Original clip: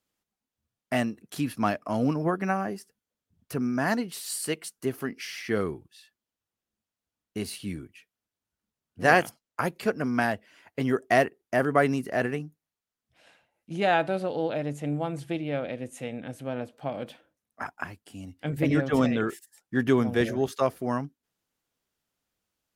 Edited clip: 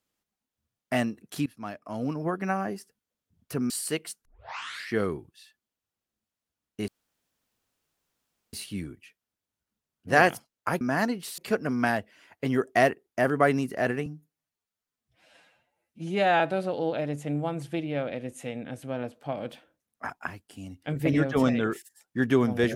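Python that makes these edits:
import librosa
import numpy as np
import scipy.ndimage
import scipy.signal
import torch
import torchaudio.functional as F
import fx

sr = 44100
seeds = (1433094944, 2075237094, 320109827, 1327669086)

y = fx.edit(x, sr, fx.fade_in_from(start_s=1.46, length_s=1.24, floor_db=-19.0),
    fx.move(start_s=3.7, length_s=0.57, to_s=9.73),
    fx.tape_start(start_s=4.82, length_s=0.68),
    fx.insert_room_tone(at_s=7.45, length_s=1.65),
    fx.stretch_span(start_s=12.41, length_s=1.56, factor=1.5), tone=tone)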